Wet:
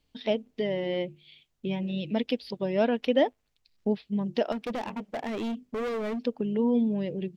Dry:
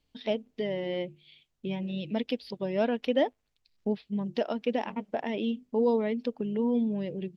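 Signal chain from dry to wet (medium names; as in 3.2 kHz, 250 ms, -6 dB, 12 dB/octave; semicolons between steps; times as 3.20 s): 4.52–6.24 s: hard clipper -31.5 dBFS, distortion -9 dB; trim +2.5 dB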